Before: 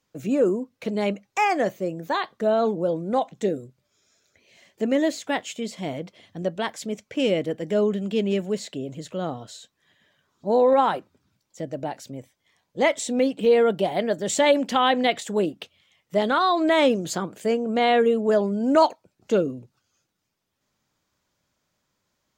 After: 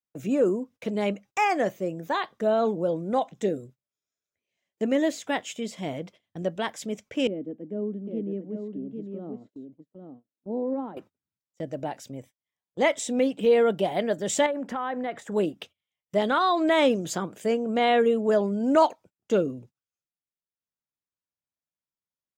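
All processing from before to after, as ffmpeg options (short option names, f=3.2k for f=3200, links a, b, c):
-filter_complex "[0:a]asettb=1/sr,asplit=3[a][b][c];[a]atrim=end=7.274[d];[b]atrim=start=7.27:end=10.97,asetpts=PTS-STARTPTS,afade=t=in:d=0.004:c=qsin,afade=t=out:st=3.696:d=0.004:c=qsin,bandpass=f=270:t=q:w=2.5,aecho=1:1:801:0.501,atrim=end_sample=163170[e];[c]atrim=start=10.966[f];[d][e]acrossfade=d=0.004:c1=hsin:c2=qsin[g];[g][f]acrossfade=d=0.004:c1=qsin:c2=hsin,asettb=1/sr,asplit=3[h][i][j];[h]atrim=end=14.464[k];[i]atrim=start=14.46:end=15.32,asetpts=PTS-STARTPTS,afade=t=in:d=0.004:c=qsin,afade=t=out:st=0.856:d=0.004:c=qsin,highshelf=f=2.2k:t=q:w=1.5:g=-10.5,acompressor=threshold=-27dB:ratio=3:attack=3.2:release=140:knee=1:detection=peak[l];[j]atrim=start=15.316[m];[k][l]acrossfade=d=0.004:c1=hsin:c2=qsin[n];[n][m]acrossfade=d=0.004:c1=qsin:c2=hsin,bandreject=f=4.3k:w=9.7,agate=range=-25dB:threshold=-45dB:ratio=16:detection=peak,volume=-2dB"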